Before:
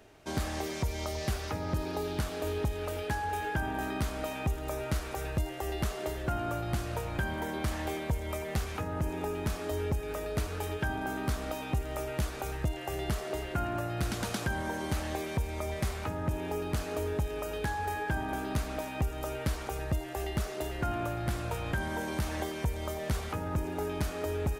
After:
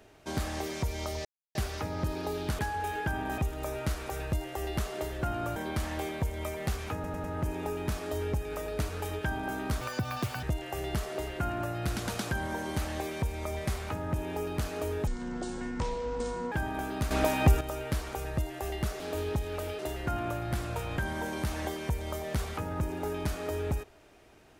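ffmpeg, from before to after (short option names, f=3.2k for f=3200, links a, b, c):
-filter_complex "[0:a]asplit=16[a][b][c][d][e][f][g][h][i][j][k][l][m][n][o][p];[a]atrim=end=1.25,asetpts=PTS-STARTPTS,afade=t=out:st=1.246:d=0.004:c=hsin,apad=pad_dur=0.3[q];[b]atrim=start=1.25:end=2.292,asetpts=PTS-STARTPTS,afade=t=in:d=0.004:c=hsin[r];[c]atrim=start=3.078:end=3.872[s];[d]atrim=start=4.428:end=6.612[t];[e]atrim=start=7.438:end=8.922[u];[f]atrim=start=8.818:end=8.922[v];[g]atrim=start=8.818:end=8.922[w];[h]atrim=start=8.818:end=11.394[x];[i]atrim=start=11.39:end=12.58,asetpts=PTS-STARTPTS,asetrate=84672,aresample=44100[y];[j]atrim=start=12.576:end=17.224[z];[k]atrim=start=17.22:end=18.06,asetpts=PTS-STARTPTS,asetrate=25578,aresample=44100[aa];[l]atrim=start=18.056:end=18.652[ab];[m]atrim=start=18.648:end=19.152,asetpts=PTS-STARTPTS,volume=9.5dB[ac];[n]atrim=start=19.148:end=20.542[ad];[o]atrim=start=2.288:end=3.082[ae];[p]atrim=start=20.538[af];[q][r]concat=n=2:v=0:a=1[ag];[ag][s]acrossfade=d=0.004:c1=hsin:c2=hsin[ah];[ah][t]acrossfade=d=0.004:c1=hsin:c2=hsin[ai];[ai][u]acrossfade=d=0.004:c1=hsin:c2=hsin[aj];[aj][v]acrossfade=d=0.004:c1=hsin:c2=hsin[ak];[ak][w]acrossfade=d=0.004:c1=hsin:c2=hsin[al];[al][x]acrossfade=d=0.004:c1=hsin:c2=hsin[am];[am][y]acrossfade=d=0.004:c1=hsin:c2=hsin[an];[an][z]acrossfade=d=0.004:c1=hsin:c2=hsin[ao];[ao][aa]acrossfade=d=0.004:c1=hsin:c2=hsin[ap];[ap][ab]acrossfade=d=0.004:c1=hsin:c2=hsin[aq];[aq][ac]acrossfade=d=0.004:c1=hsin:c2=hsin[ar];[ar][ad]acrossfade=d=0.004:c1=hsin:c2=hsin[as];[as][ae]acrossfade=d=0.004:c1=hsin:c2=hsin[at];[at][af]acrossfade=d=0.004:c1=hsin:c2=hsin"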